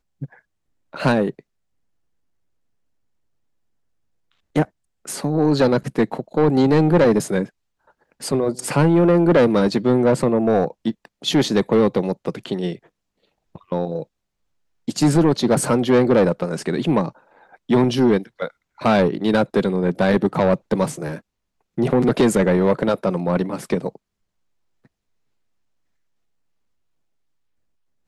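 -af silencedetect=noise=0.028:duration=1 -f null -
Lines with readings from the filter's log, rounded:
silence_start: 1.39
silence_end: 4.56 | silence_duration: 3.17
silence_start: 23.96
silence_end: 28.07 | silence_duration: 4.12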